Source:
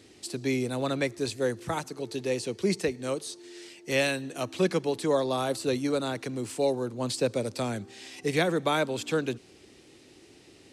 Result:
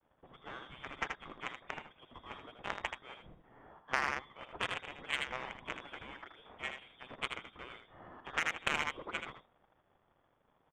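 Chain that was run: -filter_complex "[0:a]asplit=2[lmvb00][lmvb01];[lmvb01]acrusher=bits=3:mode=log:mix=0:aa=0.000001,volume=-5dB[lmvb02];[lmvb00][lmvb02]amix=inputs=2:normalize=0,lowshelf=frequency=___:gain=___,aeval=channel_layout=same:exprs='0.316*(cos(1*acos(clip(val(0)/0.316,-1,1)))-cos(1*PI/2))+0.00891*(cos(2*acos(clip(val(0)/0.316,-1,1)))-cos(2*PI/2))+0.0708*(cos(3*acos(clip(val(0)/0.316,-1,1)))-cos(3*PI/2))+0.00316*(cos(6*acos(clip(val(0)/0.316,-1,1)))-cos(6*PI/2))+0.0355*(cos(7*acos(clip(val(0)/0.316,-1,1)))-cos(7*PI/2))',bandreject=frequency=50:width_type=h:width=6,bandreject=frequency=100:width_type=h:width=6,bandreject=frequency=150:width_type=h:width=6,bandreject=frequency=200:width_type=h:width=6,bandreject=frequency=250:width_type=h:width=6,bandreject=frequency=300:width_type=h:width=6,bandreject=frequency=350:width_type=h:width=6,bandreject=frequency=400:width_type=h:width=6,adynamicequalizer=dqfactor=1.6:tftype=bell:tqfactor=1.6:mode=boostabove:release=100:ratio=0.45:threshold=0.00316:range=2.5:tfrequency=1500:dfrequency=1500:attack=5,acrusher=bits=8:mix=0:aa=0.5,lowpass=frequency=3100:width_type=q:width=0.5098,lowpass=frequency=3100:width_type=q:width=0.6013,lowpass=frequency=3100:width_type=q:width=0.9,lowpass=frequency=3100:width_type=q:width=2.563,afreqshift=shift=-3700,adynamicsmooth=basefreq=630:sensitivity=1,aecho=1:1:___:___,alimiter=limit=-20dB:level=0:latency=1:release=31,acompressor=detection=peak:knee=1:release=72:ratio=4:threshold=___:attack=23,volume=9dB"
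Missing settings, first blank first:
490, -9, 79, 0.422, -46dB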